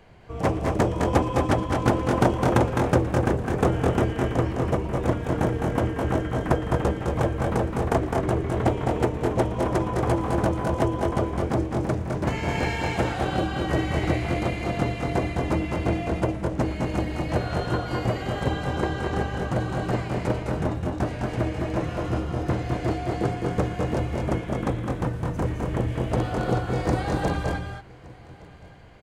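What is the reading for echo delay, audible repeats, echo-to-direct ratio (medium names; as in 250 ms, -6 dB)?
115 ms, 4, -2.0 dB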